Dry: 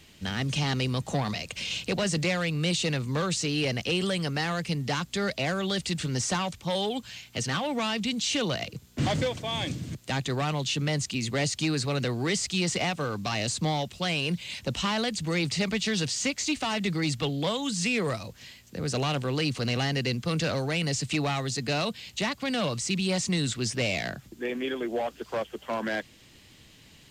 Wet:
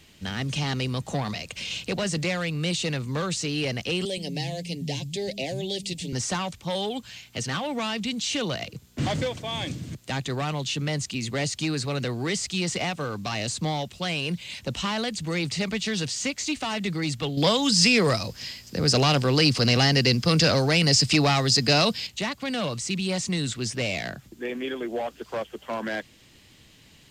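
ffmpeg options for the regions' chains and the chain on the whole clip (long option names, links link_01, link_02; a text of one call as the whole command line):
ffmpeg -i in.wav -filter_complex "[0:a]asettb=1/sr,asplit=3[link_01][link_02][link_03];[link_01]atrim=end=4.054[link_04];[link_02]atrim=start=4.05:end=6.13,asetpts=PTS-STARTPTS,afade=type=in:duration=0.004:curve=qsin,afade=type=out:start_time=2.076:duration=0.004:curve=qsin,asuperstop=centerf=1300:order=4:qfactor=0.75,aecho=1:1:7.5:0.33,atrim=end_sample=91728,acrossover=split=190[link_05][link_06];[link_05]adelay=120[link_07];[link_07][link_06]amix=inputs=2:normalize=0,atrim=end_sample=91728[link_08];[link_03]atrim=start=6.126[link_09];[link_04][link_08]acrossfade=duration=0.004:curve1=hsin:curve2=qsin[link_10];[link_10][link_09]acrossfade=duration=0.004:curve1=qsin:curve2=hsin,asettb=1/sr,asplit=3[link_11][link_12][link_13];[link_11]atrim=end=17.374[link_14];[link_12]atrim=start=17.37:end=22.07,asetpts=PTS-STARTPTS,afade=type=in:duration=0.004:curve=qsin,afade=type=out:start_time=4.696:duration=0.004:curve=qsin,equalizer=frequency=5000:width_type=o:width=0.26:gain=13,acontrast=79[link_15];[link_13]atrim=start=22.066[link_16];[link_14][link_15]acrossfade=duration=0.004:curve1=hsin:curve2=qsin[link_17];[link_17][link_16]acrossfade=duration=0.004:curve1=qsin:curve2=hsin" out.wav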